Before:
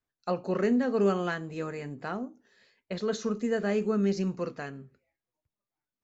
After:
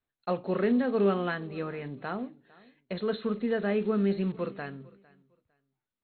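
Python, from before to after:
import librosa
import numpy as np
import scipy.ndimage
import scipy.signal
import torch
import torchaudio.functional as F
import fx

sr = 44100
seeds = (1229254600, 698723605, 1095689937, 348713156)

p1 = fx.block_float(x, sr, bits=5)
p2 = fx.brickwall_lowpass(p1, sr, high_hz=4300.0)
y = p2 + fx.echo_feedback(p2, sr, ms=454, feedback_pct=23, wet_db=-23.5, dry=0)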